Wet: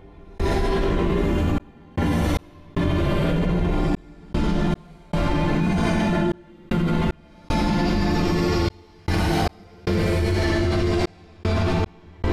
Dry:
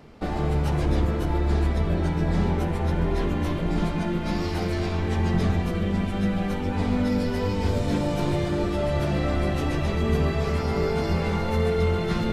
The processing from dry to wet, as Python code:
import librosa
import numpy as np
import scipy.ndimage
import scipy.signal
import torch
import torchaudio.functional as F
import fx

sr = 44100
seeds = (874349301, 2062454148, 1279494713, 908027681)

y = fx.paulstretch(x, sr, seeds[0], factor=6.3, window_s=0.1, from_s=3.09)
y = fx.step_gate(y, sr, bpm=76, pattern='..xxxxxx..xx', floor_db=-60.0, edge_ms=4.5)
y = fx.env_flatten(y, sr, amount_pct=100)